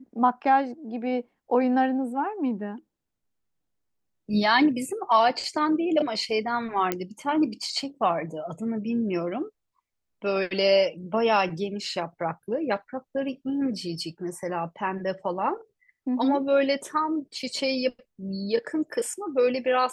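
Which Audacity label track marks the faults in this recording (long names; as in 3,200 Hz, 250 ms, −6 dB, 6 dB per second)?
6.920000	6.920000	click −10 dBFS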